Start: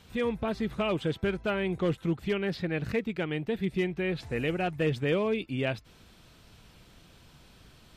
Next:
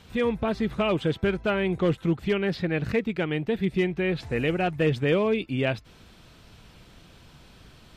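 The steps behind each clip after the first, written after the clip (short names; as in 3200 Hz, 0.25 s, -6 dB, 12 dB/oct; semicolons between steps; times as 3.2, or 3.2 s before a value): high shelf 7100 Hz -5.5 dB; gain +4.5 dB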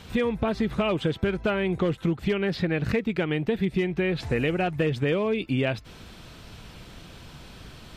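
compressor, threshold -28 dBFS, peak gain reduction 9.5 dB; gain +6.5 dB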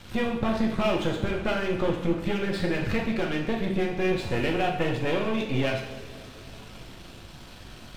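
half-wave gain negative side -12 dB; reverb, pre-delay 3 ms, DRR -1 dB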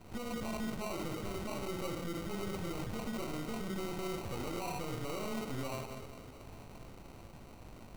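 limiter -23.5 dBFS, peak gain reduction 11.5 dB; sample-rate reducer 1700 Hz, jitter 0%; gain -7 dB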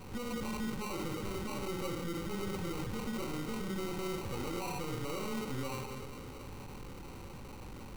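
zero-crossing step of -46 dBFS; Butterworth band-stop 660 Hz, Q 4.4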